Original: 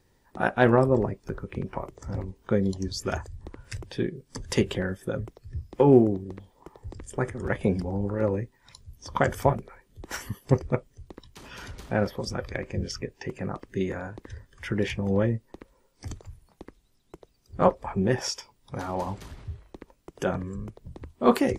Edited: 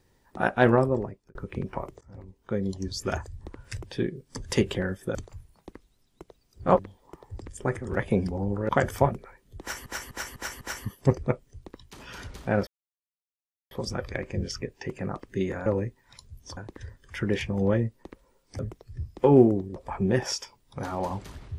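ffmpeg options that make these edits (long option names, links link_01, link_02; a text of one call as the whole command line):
ffmpeg -i in.wav -filter_complex "[0:a]asplit=15[link_01][link_02][link_03][link_04][link_05][link_06][link_07][link_08][link_09][link_10][link_11][link_12][link_13][link_14][link_15];[link_01]atrim=end=1.35,asetpts=PTS-STARTPTS,afade=type=out:start_time=0.7:duration=0.65[link_16];[link_02]atrim=start=1.35:end=2.01,asetpts=PTS-STARTPTS,afade=type=in:duration=0.004:curve=hsin,afade=type=out:start_time=0.656:duration=0.004:curve=hsin:silence=0.0794328[link_17];[link_03]atrim=start=2.01:end=5.152,asetpts=PTS-STARTPTS,afade=type=in:duration=1.04:silence=0.0794328[link_18];[link_04]atrim=start=16.078:end=17.722[link_19];[link_05]atrim=start=6.318:end=8.222[link_20];[link_06]atrim=start=9.128:end=10.302[link_21];[link_07]atrim=start=10.048:end=10.302[link_22];[link_08]atrim=start=10.048:end=10.302[link_23];[link_09]atrim=start=10.048:end=10.302[link_24];[link_10]atrim=start=10.048:end=12.11,asetpts=PTS-STARTPTS,afade=type=out:start_time=2.058:duration=0.004:curve=hsin,apad=pad_dur=1.04[link_25];[link_11]atrim=start=12.11:end=14.062,asetpts=PTS-STARTPTS,afade=type=in:duration=0.004:curve=hsin[link_26];[link_12]atrim=start=8.218:end=9.132[link_27];[link_13]atrim=start=14.058:end=16.082[link_28];[link_14]atrim=start=5.148:end=6.322[link_29];[link_15]atrim=start=17.718[link_30];[link_16][link_17][link_18]concat=n=3:v=0:a=1[link_31];[link_31][link_19]acrossfade=duration=0.004:curve1=hsin:curve2=hsin[link_32];[link_32][link_20]acrossfade=duration=0.004:curve1=hsin:curve2=hsin[link_33];[link_33][link_21]acrossfade=duration=0.004:curve1=hsin:curve2=hsin[link_34];[link_34][link_22]acrossfade=duration=0.004:curve1=hsin:curve2=hsin[link_35];[link_35][link_23]acrossfade=duration=0.004:curve1=hsin:curve2=hsin[link_36];[link_36][link_24]acrossfade=duration=0.004:curve1=hsin:curve2=hsin[link_37];[link_25][link_26]concat=n=2:v=0:a=1[link_38];[link_37][link_38]acrossfade=duration=0.004:curve1=hsin:curve2=hsin[link_39];[link_39][link_27]acrossfade=duration=0.004:curve1=hsin:curve2=hsin[link_40];[link_40][link_28]acrossfade=duration=0.004:curve1=hsin:curve2=hsin[link_41];[link_41][link_29]acrossfade=duration=0.004:curve1=hsin:curve2=hsin[link_42];[link_42][link_30]acrossfade=duration=0.004:curve1=hsin:curve2=hsin" out.wav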